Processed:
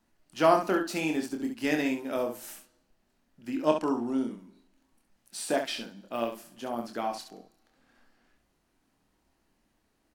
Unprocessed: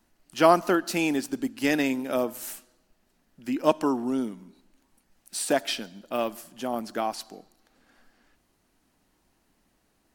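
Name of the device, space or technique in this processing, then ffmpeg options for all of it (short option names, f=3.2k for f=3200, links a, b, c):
slapback doubling: -filter_complex "[0:a]asettb=1/sr,asplit=3[a][b][c];[a]atrim=end=3.654[d];[b]atrim=start=3.65:end=4.31,asetpts=PTS-STARTPTS,afade=t=in:d=0.004:c=qsin,afade=t=out:st=0.656:d=0.004:c=qsin,lowpass=11k[e];[c]atrim=start=4.306[f];[d][e]acrossfade=d=0.004:c1=hsin:c2=qsin[g];[g][f]acrossfade=d=0.004:c1=qsin:c2=hsin,asplit=3[h][i][j];[i]adelay=26,volume=-5.5dB[k];[j]adelay=68,volume=-7dB[l];[h][k][l]amix=inputs=3:normalize=0,highshelf=f=6.7k:g=-5,volume=-5dB"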